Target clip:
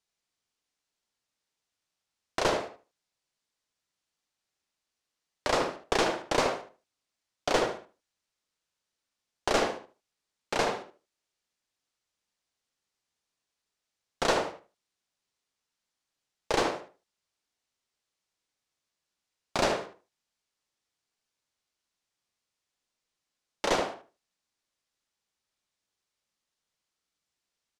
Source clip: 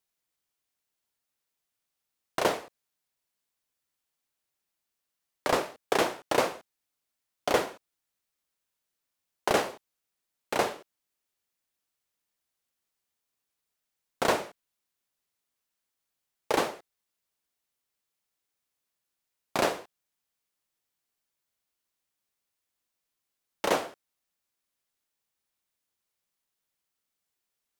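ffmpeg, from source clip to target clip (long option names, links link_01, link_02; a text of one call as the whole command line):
ffmpeg -i in.wav -filter_complex "[0:a]lowpass=5700,asplit=2[link_01][link_02];[link_02]adelay=76,lowpass=frequency=2100:poles=1,volume=-4dB,asplit=2[link_03][link_04];[link_04]adelay=76,lowpass=frequency=2100:poles=1,volume=0.24,asplit=2[link_05][link_06];[link_06]adelay=76,lowpass=frequency=2100:poles=1,volume=0.24[link_07];[link_01][link_03][link_05][link_07]amix=inputs=4:normalize=0,acrossover=split=4400[link_08][link_09];[link_08]aeval=exprs='clip(val(0),-1,0.0631)':channel_layout=same[link_10];[link_09]acontrast=67[link_11];[link_10][link_11]amix=inputs=2:normalize=0" out.wav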